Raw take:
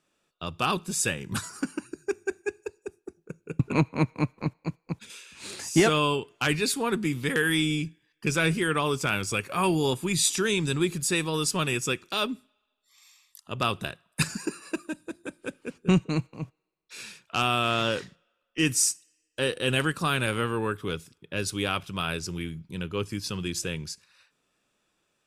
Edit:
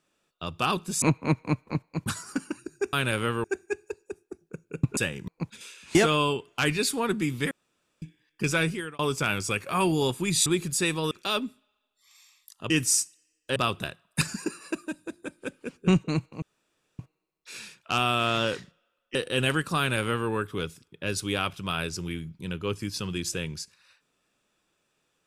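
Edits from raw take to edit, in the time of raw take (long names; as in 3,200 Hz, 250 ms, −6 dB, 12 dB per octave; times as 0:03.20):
0:01.02–0:01.33: swap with 0:03.73–0:04.77
0:05.44–0:05.78: remove
0:07.34–0:07.85: fill with room tone
0:08.39–0:08.82: fade out linear
0:10.29–0:10.76: remove
0:11.41–0:11.98: remove
0:16.43: splice in room tone 0.57 s
0:18.59–0:19.45: move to 0:13.57
0:20.08–0:20.59: duplicate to 0:02.20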